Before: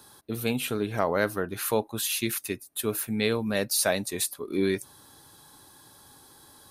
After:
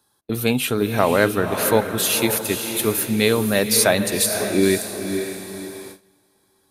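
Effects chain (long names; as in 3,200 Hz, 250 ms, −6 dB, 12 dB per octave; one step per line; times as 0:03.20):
feedback delay with all-pass diffusion 526 ms, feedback 41%, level −7 dB
noise gate with hold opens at −32 dBFS
level +8 dB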